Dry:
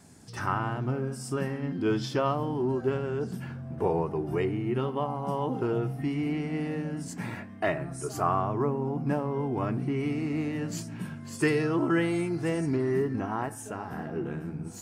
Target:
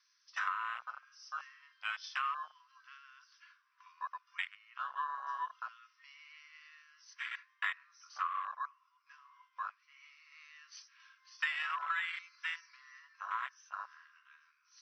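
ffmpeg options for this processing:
ffmpeg -i in.wav -filter_complex "[0:a]asettb=1/sr,asplit=3[link_01][link_02][link_03];[link_01]atrim=end=8.274[link_04];[link_02]atrim=start=8.27:end=10.32,asetpts=PTS-STARTPTS,afade=type=in:duration=0.004:curve=qsin,afade=type=out:start_time=2.046:duration=0.004:curve=qsin,flanger=delay=2.9:depth=8.1:regen=46:speed=1.7:shape=triangular[link_05];[link_03]atrim=start=10.316[link_06];[link_04][link_05]acrossfade=duration=0.004:curve1=hsin:curve2=qsin[link_07];[link_07][link_06]acrossfade=duration=0.004:curve1=qsin:curve2=hsin,afftfilt=real='re*between(b*sr/4096,990,6200)':imag='im*between(b*sr/4096,990,6200)':win_size=4096:overlap=0.75,afwtdn=0.0126,acompressor=threshold=-35dB:ratio=10,highshelf=frequency=3400:gain=10,volume=2dB" out.wav

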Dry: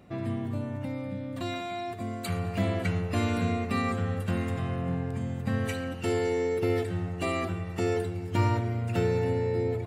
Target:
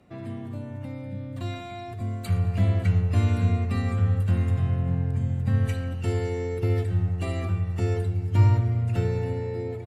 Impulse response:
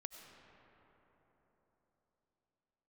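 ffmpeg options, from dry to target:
-filter_complex "[0:a]bandreject=frequency=168.6:width_type=h:width=4,bandreject=frequency=337.2:width_type=h:width=4,bandreject=frequency=505.8:width_type=h:width=4,bandreject=frequency=674.4:width_type=h:width=4,bandreject=frequency=843:width_type=h:width=4,bandreject=frequency=1011.6:width_type=h:width=4,bandreject=frequency=1180.2:width_type=h:width=4,bandreject=frequency=1348.8:width_type=h:width=4,bandreject=frequency=1517.4:width_type=h:width=4,bandreject=frequency=1686:width_type=h:width=4,bandreject=frequency=1854.6:width_type=h:width=4,bandreject=frequency=2023.2:width_type=h:width=4,bandreject=frequency=2191.8:width_type=h:width=4,bandreject=frequency=2360.4:width_type=h:width=4,bandreject=frequency=2529:width_type=h:width=4,bandreject=frequency=2697.6:width_type=h:width=4,bandreject=frequency=2866.2:width_type=h:width=4,bandreject=frequency=3034.8:width_type=h:width=4,bandreject=frequency=3203.4:width_type=h:width=4,bandreject=frequency=3372:width_type=h:width=4,bandreject=frequency=3540.6:width_type=h:width=4,bandreject=frequency=3709.2:width_type=h:width=4,bandreject=frequency=3877.8:width_type=h:width=4,bandreject=frequency=4046.4:width_type=h:width=4,bandreject=frequency=4215:width_type=h:width=4,bandreject=frequency=4383.6:width_type=h:width=4,bandreject=frequency=4552.2:width_type=h:width=4,bandreject=frequency=4720.8:width_type=h:width=4,bandreject=frequency=4889.4:width_type=h:width=4,bandreject=frequency=5058:width_type=h:width=4,bandreject=frequency=5226.6:width_type=h:width=4,bandreject=frequency=5395.2:width_type=h:width=4,bandreject=frequency=5563.8:width_type=h:width=4,bandreject=frequency=5732.4:width_type=h:width=4,bandreject=frequency=5901:width_type=h:width=4,bandreject=frequency=6069.6:width_type=h:width=4,acrossover=split=120|1500|4500[link_01][link_02][link_03][link_04];[link_01]dynaudnorm=framelen=200:gausssize=11:maxgain=15.5dB[link_05];[link_05][link_02][link_03][link_04]amix=inputs=4:normalize=0,aresample=32000,aresample=44100,volume=-3.5dB"

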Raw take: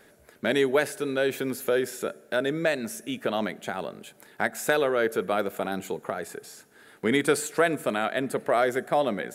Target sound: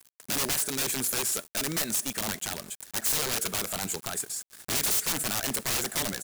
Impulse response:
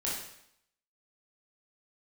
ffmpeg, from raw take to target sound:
-af "equalizer=frequency=250:width_type=o:width=1:gain=-3,equalizer=frequency=500:width_type=o:width=1:gain=-7,equalizer=frequency=8000:width_type=o:width=1:gain=9,atempo=1.5,aeval=exprs='(mod(20*val(0)+1,2)-1)/20':channel_layout=same,acrusher=bits=7:mix=0:aa=0.000001,bass=frequency=250:gain=2,treble=frequency=4000:gain=7"

